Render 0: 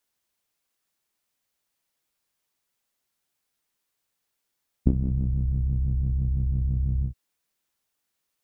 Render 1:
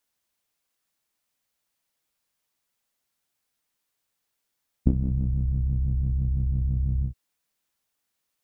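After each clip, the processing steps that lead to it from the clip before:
notch filter 380 Hz, Q 12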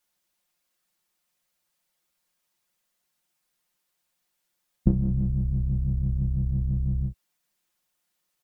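comb filter 5.6 ms, depth 76%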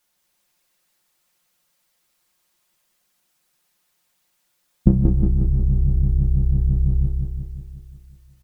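repeating echo 181 ms, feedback 58%, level −4 dB
level +6.5 dB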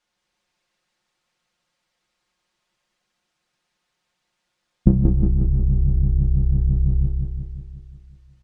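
high-frequency loss of the air 100 metres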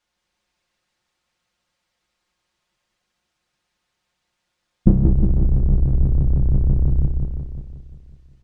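sub-octave generator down 2 octaves, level −2 dB

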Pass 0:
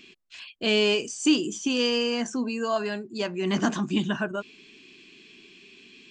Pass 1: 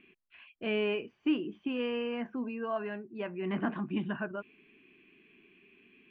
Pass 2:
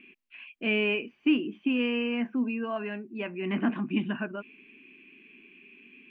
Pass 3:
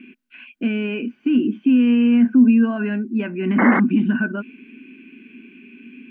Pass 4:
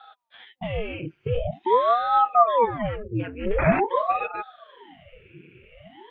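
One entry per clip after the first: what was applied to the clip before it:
Butterworth low-pass 2,600 Hz 36 dB per octave; level −7.5 dB
graphic EQ with 15 bands 100 Hz −10 dB, 250 Hz +9 dB, 2,500 Hz +10 dB
brickwall limiter −24.5 dBFS, peak gain reduction 11 dB; hollow resonant body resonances 240/1,500 Hz, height 16 dB, ringing for 40 ms; sound drawn into the spectrogram noise, 0:03.58–0:03.80, 200–2,200 Hz −23 dBFS; level +4 dB
flanger 1.1 Hz, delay 2.8 ms, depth 7.1 ms, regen +27%; ring modulator whose carrier an LFO sweeps 570 Hz, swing 85%, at 0.46 Hz

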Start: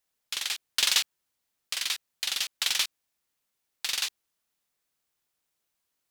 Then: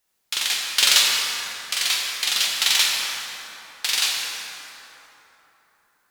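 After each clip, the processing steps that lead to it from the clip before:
mains-hum notches 60/120 Hz
dense smooth reverb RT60 3.8 s, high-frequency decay 0.5×, DRR −3 dB
level +6 dB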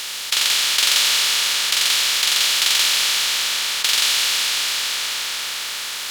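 compressor on every frequency bin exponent 0.2
level −4.5 dB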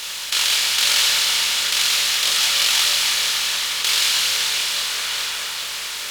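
multi-voice chorus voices 6, 0.8 Hz, delay 25 ms, depth 1.2 ms
level +2.5 dB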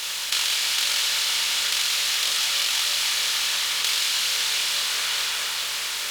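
low-shelf EQ 280 Hz −4 dB
downward compressor, threshold −20 dBFS, peak gain reduction 6.5 dB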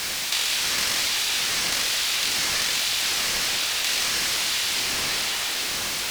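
converter with a step at zero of −26.5 dBFS
ring modulator whose carrier an LFO sweeps 860 Hz, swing 45%, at 1.2 Hz

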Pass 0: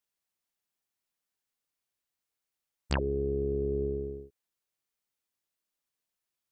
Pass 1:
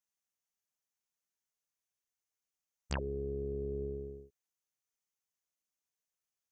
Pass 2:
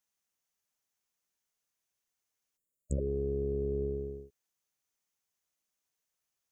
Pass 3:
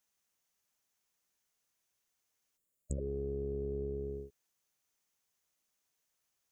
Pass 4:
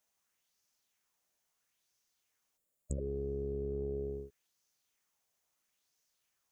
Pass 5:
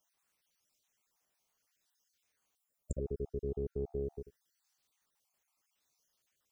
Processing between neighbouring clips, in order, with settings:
thirty-one-band graphic EQ 315 Hz −6 dB, 4,000 Hz −4 dB, 6,300 Hz +9 dB; level −6.5 dB
time-frequency box erased 0:02.57–0:03.06, 610–6,700 Hz; level +5 dB
downward compressor, threshold −38 dBFS, peak gain reduction 10 dB; level +3.5 dB
auto-filter bell 0.75 Hz 620–5,500 Hz +7 dB
time-frequency cells dropped at random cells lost 38%; level +2 dB

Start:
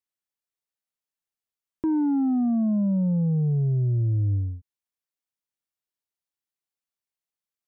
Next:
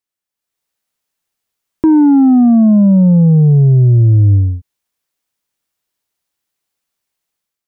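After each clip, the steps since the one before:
automatic gain control gain up to 10 dB
level +5 dB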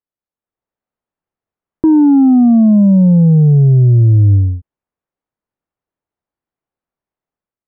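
Bessel low-pass filter 910 Hz, order 2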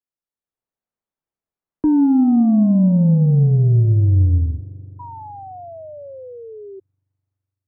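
frequency shifter −14 Hz
spring reverb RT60 3.4 s, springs 42 ms, chirp 30 ms, DRR 14.5 dB
sound drawn into the spectrogram fall, 0:04.99–0:06.80, 380–980 Hz −29 dBFS
level −6 dB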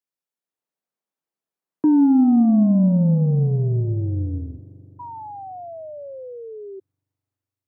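high-pass filter 170 Hz 12 dB per octave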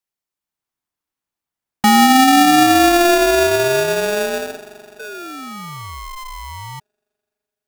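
ring modulator with a square carrier 520 Hz
level +4 dB

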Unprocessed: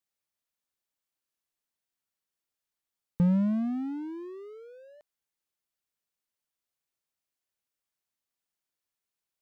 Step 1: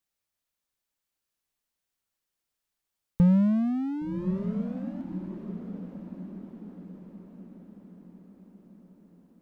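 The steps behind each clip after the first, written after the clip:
low-shelf EQ 75 Hz +8.5 dB
feedback delay with all-pass diffusion 1,107 ms, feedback 50%, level −8 dB
level +2.5 dB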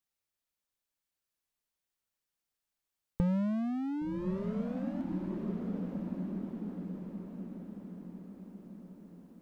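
dynamic equaliser 170 Hz, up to −7 dB, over −38 dBFS, Q 1
speech leveller within 4 dB 2 s

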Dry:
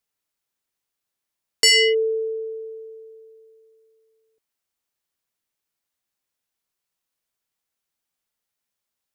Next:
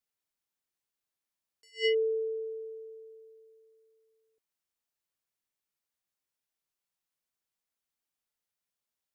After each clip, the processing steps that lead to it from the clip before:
level that may rise only so fast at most 280 dB per second
level −7 dB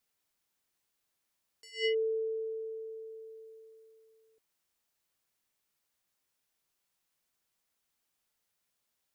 downward compressor 1.5 to 1, threshold −56 dBFS, peak gain reduction 11 dB
level +7.5 dB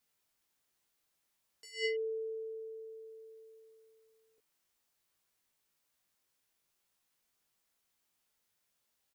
double-tracking delay 19 ms −5 dB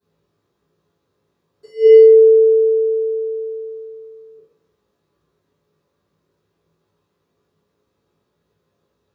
convolution reverb RT60 0.60 s, pre-delay 3 ms, DRR −15 dB
level −7 dB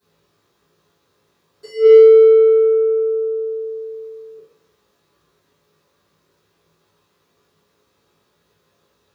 in parallel at −8 dB: soft clipping −17 dBFS, distortion −6 dB
on the sum: one half of a high-frequency compander encoder only
level −1 dB

